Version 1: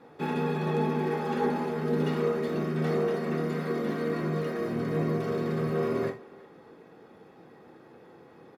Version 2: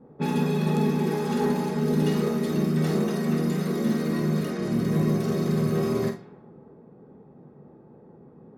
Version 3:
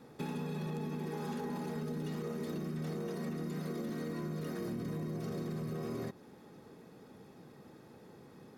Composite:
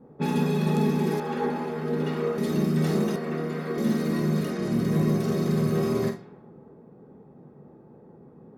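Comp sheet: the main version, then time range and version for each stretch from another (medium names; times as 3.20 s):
2
1.20–2.38 s: from 1
3.16–3.78 s: from 1
not used: 3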